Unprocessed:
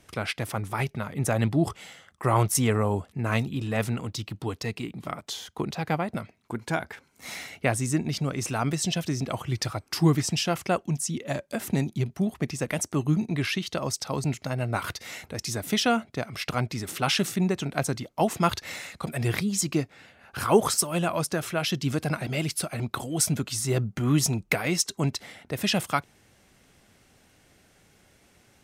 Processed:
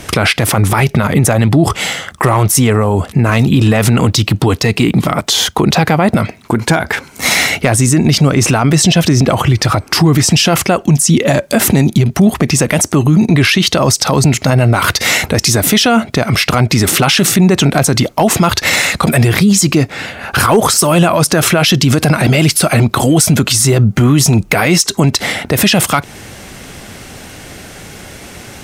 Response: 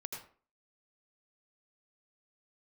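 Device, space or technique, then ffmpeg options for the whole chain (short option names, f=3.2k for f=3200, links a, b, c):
loud club master: -filter_complex "[0:a]asettb=1/sr,asplit=3[a][b][c];[a]atrim=end=8.334[d];[b]atrim=start=8.33:end=10.15,asetpts=PTS-STARTPTS,afade=t=in:d=0.004:c=qsin,afade=t=out:st=1.816:d=0.004:c=qsin,highshelf=f=3.9k:g=-5[e];[c]atrim=start=10.146[f];[d][e]acrossfade=d=0.004:c1=hsin:c2=qsin[g];[g][f]acrossfade=d=0.004:c1=qsin:c2=hsin,acompressor=threshold=-28dB:ratio=2.5,asoftclip=type=hard:threshold=-19.5dB,alimiter=level_in=29dB:limit=-1dB:release=50:level=0:latency=1,volume=-1dB"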